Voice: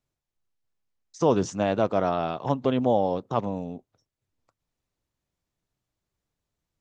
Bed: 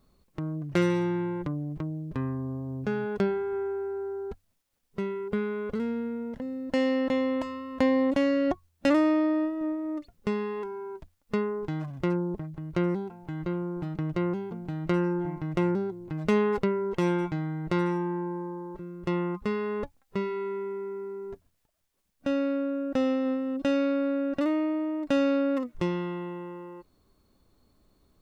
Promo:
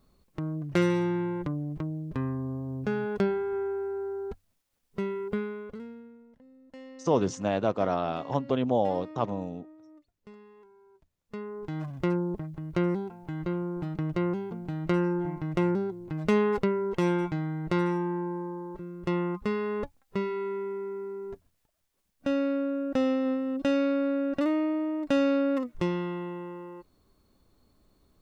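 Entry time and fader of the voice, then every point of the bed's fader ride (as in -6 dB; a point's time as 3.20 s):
5.85 s, -3.0 dB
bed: 5.28 s 0 dB
6.28 s -21 dB
10.92 s -21 dB
11.85 s 0 dB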